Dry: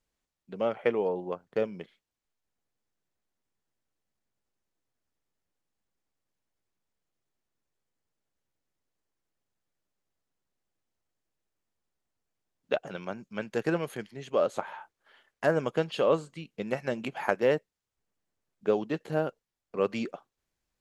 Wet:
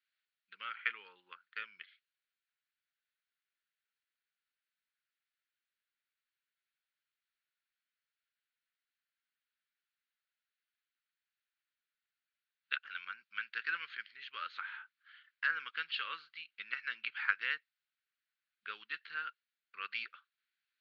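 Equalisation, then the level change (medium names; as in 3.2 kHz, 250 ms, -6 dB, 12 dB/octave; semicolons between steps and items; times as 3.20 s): elliptic band-pass 1.4–4.4 kHz, stop band 40 dB; distance through air 94 m; +3.5 dB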